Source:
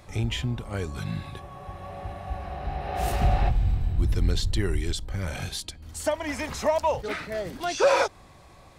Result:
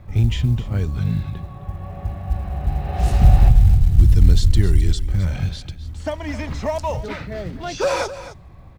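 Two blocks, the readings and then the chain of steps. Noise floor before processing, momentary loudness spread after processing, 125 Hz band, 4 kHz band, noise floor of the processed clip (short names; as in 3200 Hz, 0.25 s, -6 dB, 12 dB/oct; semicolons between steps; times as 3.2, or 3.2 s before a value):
-51 dBFS, 17 LU, +11.5 dB, +0.5 dB, -41 dBFS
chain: low-pass opened by the level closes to 2100 Hz, open at -18.5 dBFS; tone controls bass +13 dB, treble +5 dB; companded quantiser 8-bit; on a send: echo 0.262 s -14 dB; on the sum: gain -1 dB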